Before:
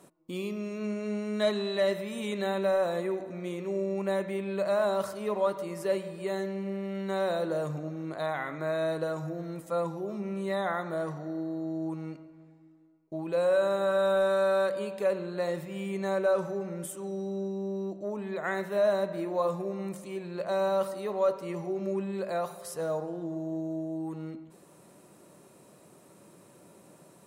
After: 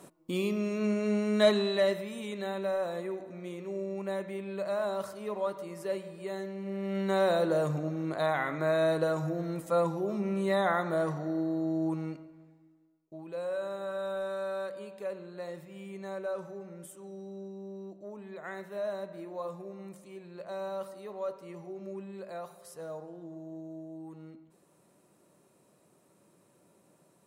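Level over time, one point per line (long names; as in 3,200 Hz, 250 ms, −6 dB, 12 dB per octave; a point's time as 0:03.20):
0:01.51 +4 dB
0:02.27 −5 dB
0:06.57 −5 dB
0:06.97 +3 dB
0:11.95 +3 dB
0:13.14 −9.5 dB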